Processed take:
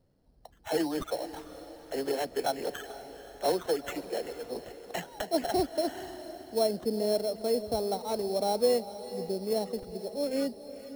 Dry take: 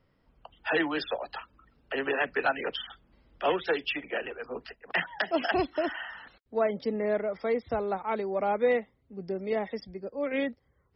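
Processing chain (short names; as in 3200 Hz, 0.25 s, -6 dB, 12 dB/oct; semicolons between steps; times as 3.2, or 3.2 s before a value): band shelf 1700 Hz -13.5 dB; sample-rate reducer 4800 Hz, jitter 0%; diffused feedback echo 0.466 s, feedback 50%, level -13 dB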